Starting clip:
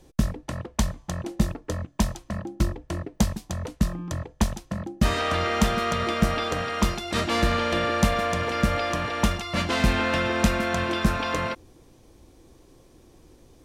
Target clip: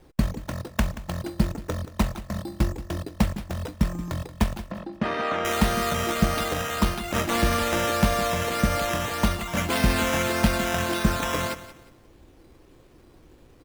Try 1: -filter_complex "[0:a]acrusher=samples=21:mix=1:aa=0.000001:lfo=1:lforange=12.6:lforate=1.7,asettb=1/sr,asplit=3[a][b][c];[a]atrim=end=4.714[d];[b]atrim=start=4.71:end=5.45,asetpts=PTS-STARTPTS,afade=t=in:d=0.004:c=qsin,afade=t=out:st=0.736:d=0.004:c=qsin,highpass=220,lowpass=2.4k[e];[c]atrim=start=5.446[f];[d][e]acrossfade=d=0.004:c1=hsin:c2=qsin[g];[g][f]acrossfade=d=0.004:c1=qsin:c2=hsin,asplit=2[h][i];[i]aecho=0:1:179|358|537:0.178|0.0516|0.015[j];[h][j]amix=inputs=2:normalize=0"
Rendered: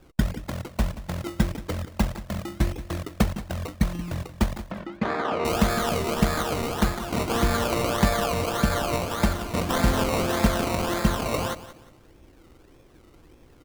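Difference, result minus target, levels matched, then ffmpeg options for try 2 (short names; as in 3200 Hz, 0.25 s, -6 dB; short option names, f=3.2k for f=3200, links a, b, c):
decimation with a swept rate: distortion +6 dB
-filter_complex "[0:a]acrusher=samples=8:mix=1:aa=0.000001:lfo=1:lforange=4.8:lforate=1.7,asettb=1/sr,asplit=3[a][b][c];[a]atrim=end=4.714[d];[b]atrim=start=4.71:end=5.45,asetpts=PTS-STARTPTS,afade=t=in:d=0.004:c=qsin,afade=t=out:st=0.736:d=0.004:c=qsin,highpass=220,lowpass=2.4k[e];[c]atrim=start=5.446[f];[d][e]acrossfade=d=0.004:c1=hsin:c2=qsin[g];[g][f]acrossfade=d=0.004:c1=qsin:c2=hsin,asplit=2[h][i];[i]aecho=0:1:179|358|537:0.178|0.0516|0.015[j];[h][j]amix=inputs=2:normalize=0"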